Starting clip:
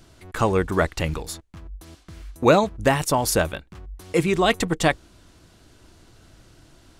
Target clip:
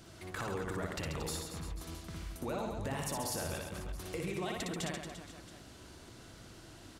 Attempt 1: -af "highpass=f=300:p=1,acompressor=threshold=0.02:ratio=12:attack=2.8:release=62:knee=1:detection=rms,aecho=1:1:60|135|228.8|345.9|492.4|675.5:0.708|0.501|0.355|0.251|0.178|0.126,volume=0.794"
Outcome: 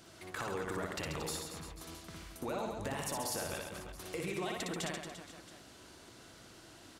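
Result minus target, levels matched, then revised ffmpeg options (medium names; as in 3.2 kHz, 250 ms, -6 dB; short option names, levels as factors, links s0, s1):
125 Hz band -4.0 dB
-af "highpass=f=82:p=1,acompressor=threshold=0.02:ratio=12:attack=2.8:release=62:knee=1:detection=rms,aecho=1:1:60|135|228.8|345.9|492.4|675.5:0.708|0.501|0.355|0.251|0.178|0.126,volume=0.794"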